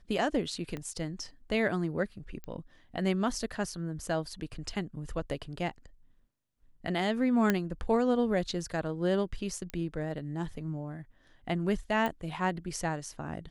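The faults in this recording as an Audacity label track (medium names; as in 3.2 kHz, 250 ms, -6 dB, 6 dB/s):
0.770000	0.770000	pop -25 dBFS
2.440000	2.440000	pop -29 dBFS
7.500000	7.500000	pop -12 dBFS
9.700000	9.700000	pop -23 dBFS
12.060000	12.060000	pop -19 dBFS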